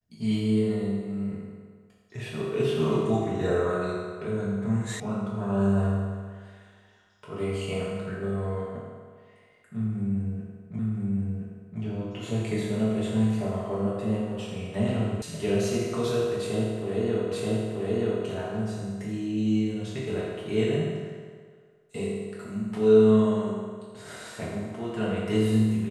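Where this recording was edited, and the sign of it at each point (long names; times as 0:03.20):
0:05.00: cut off before it has died away
0:10.79: the same again, the last 1.02 s
0:15.22: cut off before it has died away
0:17.32: the same again, the last 0.93 s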